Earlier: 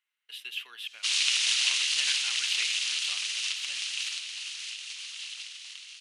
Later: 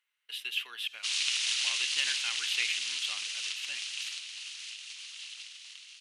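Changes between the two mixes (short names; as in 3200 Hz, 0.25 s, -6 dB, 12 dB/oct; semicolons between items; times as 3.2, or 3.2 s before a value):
speech +3.0 dB; background -4.5 dB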